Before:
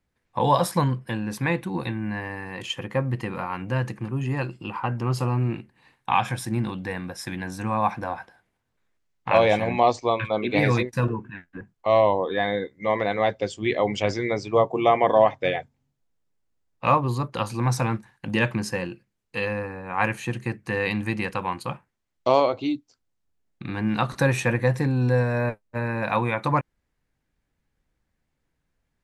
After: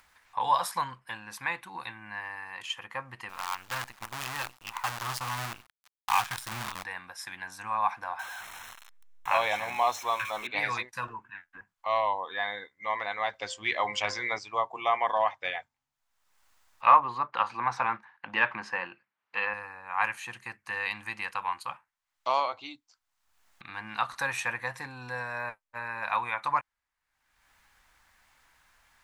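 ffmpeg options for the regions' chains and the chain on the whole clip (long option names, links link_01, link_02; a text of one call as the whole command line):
ffmpeg -i in.wav -filter_complex "[0:a]asettb=1/sr,asplit=3[link_01][link_02][link_03];[link_01]atrim=end=3.294[link_04];[link_02]atrim=start=3.29:end=6.84,asetpts=PTS-STARTPTS,afade=type=in:duration=0.004:curve=qsin,afade=type=out:start_time=3.546:duration=0.004:curve=qsin,asubboost=boost=3.5:cutoff=220,acrusher=bits=5:dc=4:mix=0:aa=0.000001[link_05];[link_03]atrim=start=6.836[link_06];[link_04][link_05]acrossfade=duration=0.004:curve1=hsin:curve2=qsin[link_07];[link_07][link_06]acrossfade=duration=0.004:curve1=qsin:curve2=hsin,asettb=1/sr,asplit=3[link_08][link_09][link_10];[link_08]atrim=end=8.194[link_11];[link_09]atrim=start=8.19:end=10.47,asetpts=PTS-STARTPTS,afade=type=in:duration=0.004:curve=qsin,afade=type=out:start_time=2.276:duration=0.004:curve=qsin,aeval=exprs='val(0)+0.5*0.0266*sgn(val(0))':channel_layout=same,asuperstop=centerf=4700:order=20:qfactor=6.5[link_12];[link_10]atrim=start=10.466[link_13];[link_11][link_12]acrossfade=duration=0.004:curve1=hsin:curve2=qsin[link_14];[link_14][link_13]acrossfade=duration=0.004:curve1=qsin:curve2=hsin,asettb=1/sr,asplit=3[link_15][link_16][link_17];[link_15]atrim=end=13.334[link_18];[link_16]atrim=start=13.33:end=14.39,asetpts=PTS-STARTPTS,afade=type=in:duration=0.004:curve=qsin,afade=type=out:start_time=1.056:duration=0.004:curve=qsin,bandreject=frequency=173.2:width_type=h:width=4,bandreject=frequency=346.4:width_type=h:width=4,bandreject=frequency=519.6:width_type=h:width=4,bandreject=frequency=692.8:width_type=h:width=4,bandreject=frequency=866:width_type=h:width=4,bandreject=frequency=1039.2:width_type=h:width=4,bandreject=frequency=1212.4:width_type=h:width=4,bandreject=frequency=1385.6:width_type=h:width=4,bandreject=frequency=1558.8:width_type=h:width=4,bandreject=frequency=1732:width_type=h:width=4,bandreject=frequency=1905.2:width_type=h:width=4,acontrast=21[link_19];[link_17]atrim=start=14.386[link_20];[link_18][link_19]acrossfade=duration=0.004:curve1=hsin:curve2=qsin[link_21];[link_21][link_20]acrossfade=duration=0.004:curve1=qsin:curve2=hsin,asettb=1/sr,asplit=3[link_22][link_23][link_24];[link_22]atrim=end=16.864[link_25];[link_23]atrim=start=16.86:end=19.54,asetpts=PTS-STARTPTS,afade=type=in:duration=0.004:curve=qsin,afade=type=out:start_time=2.676:duration=0.004:curve=qsin,acontrast=63,highpass=170,lowpass=2300[link_26];[link_24]atrim=start=19.536[link_27];[link_25][link_26]acrossfade=duration=0.004:curve1=hsin:curve2=qsin[link_28];[link_28][link_27]acrossfade=duration=0.004:curve1=qsin:curve2=hsin,lowshelf=frequency=640:width_type=q:width=1.5:gain=-14,acompressor=mode=upward:threshold=-40dB:ratio=2.5,equalizer=frequency=150:width=1.1:gain=-6.5,volume=-4.5dB" out.wav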